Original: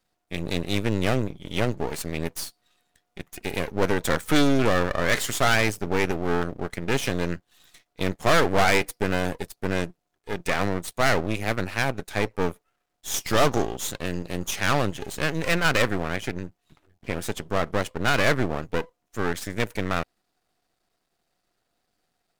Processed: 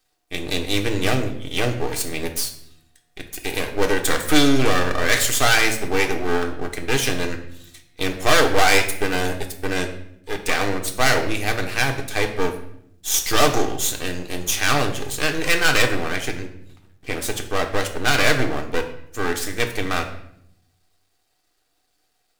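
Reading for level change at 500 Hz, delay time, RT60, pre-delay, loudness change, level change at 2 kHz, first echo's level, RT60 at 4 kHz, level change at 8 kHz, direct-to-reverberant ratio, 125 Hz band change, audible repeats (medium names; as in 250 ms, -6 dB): +2.5 dB, no echo, 0.70 s, 3 ms, +4.0 dB, +5.0 dB, no echo, 0.55 s, +9.0 dB, 3.0 dB, +0.5 dB, no echo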